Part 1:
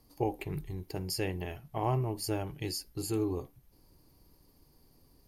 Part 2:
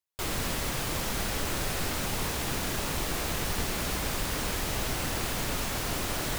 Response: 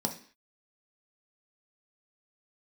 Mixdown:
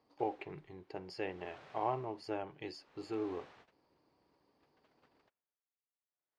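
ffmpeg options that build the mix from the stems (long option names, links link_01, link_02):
-filter_complex "[0:a]volume=-1dB,asplit=2[link_01][link_02];[1:a]aeval=exprs='val(0)*pow(10,-22*(0.5-0.5*cos(2*PI*0.6*n/s))/20)':channel_layout=same,volume=-19.5dB[link_03];[link_02]apad=whole_len=281542[link_04];[link_03][link_04]sidechaingate=range=-33dB:threshold=-59dB:ratio=16:detection=peak[link_05];[link_01][link_05]amix=inputs=2:normalize=0,highpass=600,lowpass=4300,aemphasis=mode=reproduction:type=riaa"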